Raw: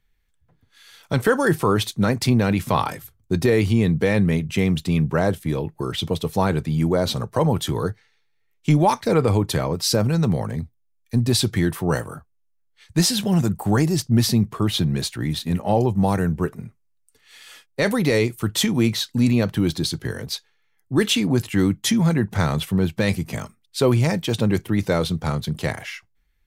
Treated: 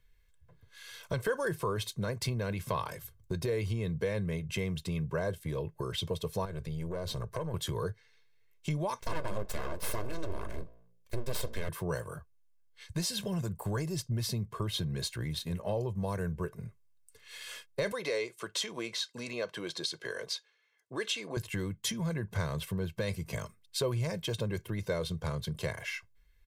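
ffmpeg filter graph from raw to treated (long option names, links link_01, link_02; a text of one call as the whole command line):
ffmpeg -i in.wav -filter_complex "[0:a]asettb=1/sr,asplit=3[link_01][link_02][link_03];[link_01]atrim=end=6.454[link_04];[link_02]atrim=start=6.45:end=7.54,asetpts=PTS-STARTPTS,afade=type=in:duration=0.004:curve=qsin,afade=type=out:start_time=1.086:duration=0.004:curve=qsin,lowshelf=frequency=88:gain=9.5,acompressor=threshold=-25dB:ratio=2.5:attack=3.2:release=140:knee=1:detection=peak,aeval=exprs='(tanh(10*val(0)+0.55)-tanh(0.55))/10':channel_layout=same[link_05];[link_03]atrim=start=7.536[link_06];[link_04][link_05]acrossfade=duration=0.004:curve1=hsin:curve2=qsin[link_07];[link_07][link_06]acrossfade=duration=0.004:curve1=qsin:curve2=hsin,asettb=1/sr,asplit=3[link_08][link_09][link_10];[link_08]atrim=end=8.994[link_11];[link_09]atrim=start=8.99:end=11.69,asetpts=PTS-STARTPTS,afade=type=in:duration=0.004:curve=qsin,afade=type=out:start_time=2.696:duration=0.004:curve=qsin,bandreject=frequency=57.27:width_type=h:width=4,bandreject=frequency=114.54:width_type=h:width=4,bandreject=frequency=171.81:width_type=h:width=4,bandreject=frequency=229.08:width_type=h:width=4,bandreject=frequency=286.35:width_type=h:width=4,bandreject=frequency=343.62:width_type=h:width=4,bandreject=frequency=400.89:width_type=h:width=4,bandreject=frequency=458.16:width_type=h:width=4,bandreject=frequency=515.43:width_type=h:width=4,bandreject=frequency=572.7:width_type=h:width=4,bandreject=frequency=629.97:width_type=h:width=4,bandreject=frequency=687.24:width_type=h:width=4,aeval=exprs='abs(val(0))':channel_layout=same[link_12];[link_10]atrim=start=11.686[link_13];[link_11][link_12]acrossfade=duration=0.004:curve1=hsin:curve2=qsin[link_14];[link_14][link_13]acrossfade=duration=0.004:curve1=qsin:curve2=hsin,asettb=1/sr,asplit=3[link_15][link_16][link_17];[link_15]atrim=end=17.924[link_18];[link_16]atrim=start=17.92:end=21.37,asetpts=PTS-STARTPTS,afade=type=in:duration=0.004:curve=qsin,afade=type=out:start_time=3.446:duration=0.004:curve=qsin,highpass=430,lowpass=7800,bandreject=frequency=920:width=18[link_19];[link_17]atrim=start=21.366[link_20];[link_18][link_19]acrossfade=duration=0.004:curve1=hsin:curve2=qsin[link_21];[link_21][link_20]acrossfade=duration=0.004:curve1=qsin:curve2=hsin,acompressor=threshold=-36dB:ratio=2.5,aecho=1:1:1.9:0.63,volume=-1.5dB" out.wav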